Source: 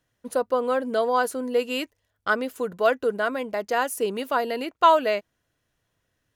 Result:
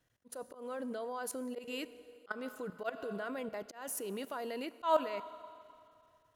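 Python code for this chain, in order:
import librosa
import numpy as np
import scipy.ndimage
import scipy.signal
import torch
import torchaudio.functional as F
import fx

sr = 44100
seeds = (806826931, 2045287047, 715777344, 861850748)

y = fx.level_steps(x, sr, step_db=19)
y = fx.rev_schroeder(y, sr, rt60_s=2.5, comb_ms=29, drr_db=17.0)
y = fx.auto_swell(y, sr, attack_ms=189.0)
y = y * librosa.db_to_amplitude(-1.5)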